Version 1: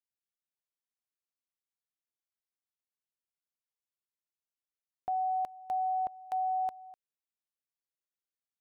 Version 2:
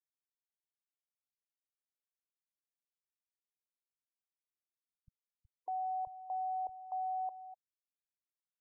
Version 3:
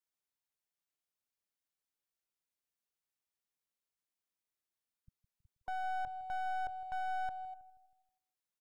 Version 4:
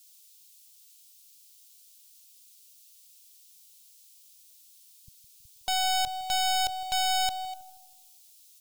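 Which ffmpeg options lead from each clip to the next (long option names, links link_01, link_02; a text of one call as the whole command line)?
ffmpeg -i in.wav -filter_complex "[0:a]acrossover=split=180[link_01][link_02];[link_02]adelay=600[link_03];[link_01][link_03]amix=inputs=2:normalize=0,alimiter=level_in=9.5dB:limit=-24dB:level=0:latency=1:release=17,volume=-9.5dB,afftfilt=real='re*gte(hypot(re,im),0.00562)':imag='im*gte(hypot(re,im),0.00562)':win_size=1024:overlap=0.75" out.wav
ffmpeg -i in.wav -filter_complex "[0:a]acrossover=split=310[link_01][link_02];[link_02]aeval=exprs='clip(val(0),-1,0.00398)':channel_layout=same[link_03];[link_01][link_03]amix=inputs=2:normalize=0,asplit=2[link_04][link_05];[link_05]adelay=160,lowpass=frequency=920:poles=1,volume=-14dB,asplit=2[link_06][link_07];[link_07]adelay=160,lowpass=frequency=920:poles=1,volume=0.49,asplit=2[link_08][link_09];[link_09]adelay=160,lowpass=frequency=920:poles=1,volume=0.49,asplit=2[link_10][link_11];[link_11]adelay=160,lowpass=frequency=920:poles=1,volume=0.49,asplit=2[link_12][link_13];[link_13]adelay=160,lowpass=frequency=920:poles=1,volume=0.49[link_14];[link_04][link_06][link_08][link_10][link_12][link_14]amix=inputs=6:normalize=0,volume=2dB" out.wav
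ffmpeg -i in.wav -af "aexciter=amount=11:drive=8.2:freq=2600,volume=8.5dB" out.wav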